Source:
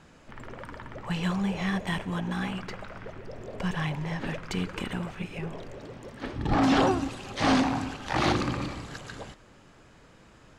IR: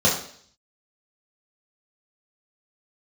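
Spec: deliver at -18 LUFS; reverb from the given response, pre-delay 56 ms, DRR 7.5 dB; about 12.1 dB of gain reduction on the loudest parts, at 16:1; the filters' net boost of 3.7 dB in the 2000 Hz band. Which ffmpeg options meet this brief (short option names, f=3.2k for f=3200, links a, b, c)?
-filter_complex "[0:a]equalizer=f=2k:t=o:g=4.5,acompressor=threshold=-30dB:ratio=16,asplit=2[a][b];[1:a]atrim=start_sample=2205,adelay=56[c];[b][c]afir=irnorm=-1:irlink=0,volume=-25dB[d];[a][d]amix=inputs=2:normalize=0,volume=16.5dB"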